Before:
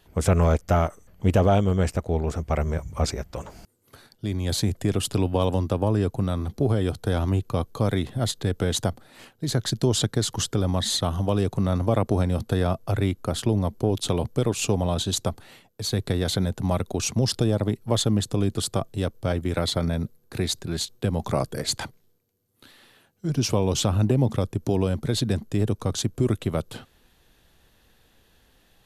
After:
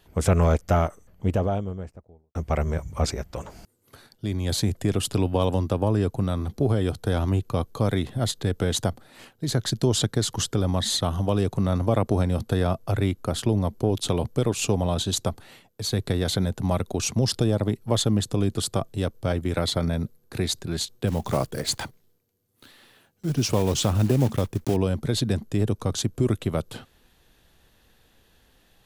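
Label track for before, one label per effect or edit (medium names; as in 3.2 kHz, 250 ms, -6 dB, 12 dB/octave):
0.660000	2.350000	studio fade out
21.070000	24.770000	block-companded coder 5-bit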